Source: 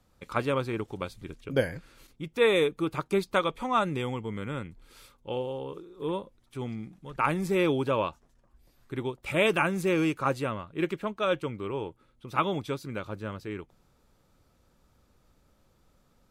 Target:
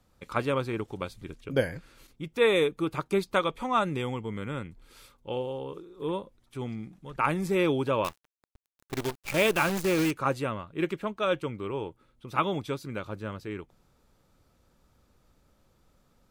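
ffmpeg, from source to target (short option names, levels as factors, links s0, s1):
-filter_complex "[0:a]asettb=1/sr,asplit=3[s0][s1][s2];[s0]atrim=end=8.044[s3];[s1]atrim=start=8.04:end=10.11,asetpts=PTS-STARTPTS,afade=t=in:d=0.004:c=qsin,afade=t=out:st=2.066:d=0.004:c=qsin,acrusher=bits=6:dc=4:mix=0:aa=0.000001[s4];[s2]atrim=start=10.106[s5];[s3][s4]acrossfade=d=0.004:c1=hsin:c2=qsin[s6];[s6][s5]acrossfade=d=0.004:c1=qsin:c2=hsin"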